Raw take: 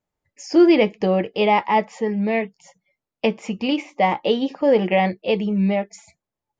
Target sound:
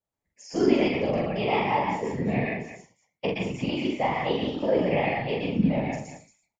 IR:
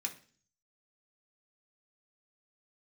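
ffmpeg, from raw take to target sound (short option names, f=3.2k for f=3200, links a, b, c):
-filter_complex "[0:a]asplit=2[a][b];[1:a]atrim=start_sample=2205,atrim=end_sample=6174,adelay=120[c];[b][c]afir=irnorm=-1:irlink=0,volume=-0.5dB[d];[a][d]amix=inputs=2:normalize=0,afftfilt=real='hypot(re,im)*cos(2*PI*random(0))':imag='hypot(re,im)*sin(2*PI*random(1))':win_size=512:overlap=0.75,aecho=1:1:43.73|227.4:0.708|0.282,volume=-4dB"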